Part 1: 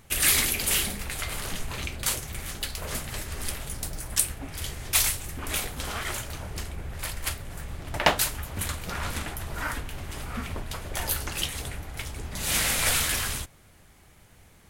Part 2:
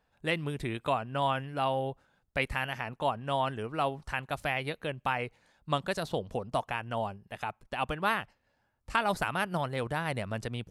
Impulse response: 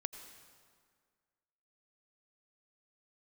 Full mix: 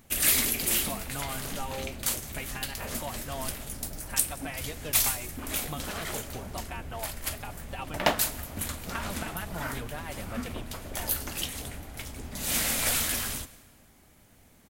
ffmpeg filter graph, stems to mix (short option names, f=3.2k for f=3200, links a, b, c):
-filter_complex "[0:a]equalizer=f=250:t=o:w=0.67:g=9,equalizer=f=630:t=o:w=0.67:g=4,equalizer=f=10k:t=o:w=0.67:g=-3,volume=-8.5dB,asplit=3[a][b][c];[b]volume=-6.5dB[d];[c]volume=-20dB[e];[1:a]acompressor=threshold=-30dB:ratio=6,asplit=2[f][g];[g]adelay=4.3,afreqshift=-0.83[h];[f][h]amix=inputs=2:normalize=1,volume=-1.5dB,asplit=3[i][j][k];[i]atrim=end=3.53,asetpts=PTS-STARTPTS,afade=t=out:st=3.526:d=0.004:c=hsin[l];[j]atrim=start=3.53:end=4.03,asetpts=PTS-STARTPTS,volume=0[m];[k]atrim=start=4.03,asetpts=PTS-STARTPTS,afade=t=in:d=0.004:c=hsin[n];[l][m][n]concat=n=3:v=0:a=1[o];[2:a]atrim=start_sample=2205[p];[d][p]afir=irnorm=-1:irlink=0[q];[e]aecho=0:1:178:1[r];[a][o][q][r]amix=inputs=4:normalize=0,crystalizer=i=1:c=0"